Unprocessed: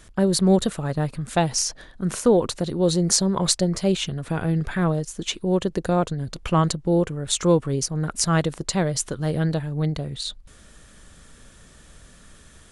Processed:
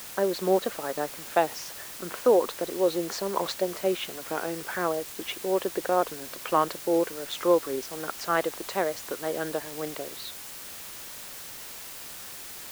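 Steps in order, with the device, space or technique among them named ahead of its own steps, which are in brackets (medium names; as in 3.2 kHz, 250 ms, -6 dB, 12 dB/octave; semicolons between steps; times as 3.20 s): high-pass 290 Hz 12 dB/octave; wax cylinder (band-pass 330–2300 Hz; wow and flutter; white noise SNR 12 dB)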